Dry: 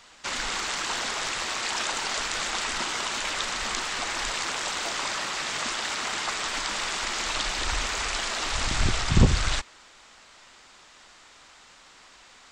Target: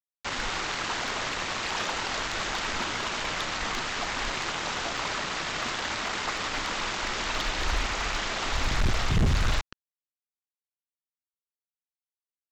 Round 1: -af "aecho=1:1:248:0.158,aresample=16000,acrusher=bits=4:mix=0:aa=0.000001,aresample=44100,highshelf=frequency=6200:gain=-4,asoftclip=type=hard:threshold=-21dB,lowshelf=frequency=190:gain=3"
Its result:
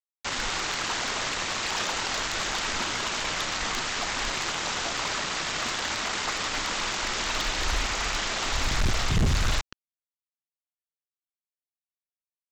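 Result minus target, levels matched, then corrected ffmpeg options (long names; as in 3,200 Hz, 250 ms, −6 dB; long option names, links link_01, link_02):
8,000 Hz band +4.0 dB
-af "aecho=1:1:248:0.158,aresample=16000,acrusher=bits=4:mix=0:aa=0.000001,aresample=44100,highshelf=frequency=6200:gain=-14.5,asoftclip=type=hard:threshold=-21dB,lowshelf=frequency=190:gain=3"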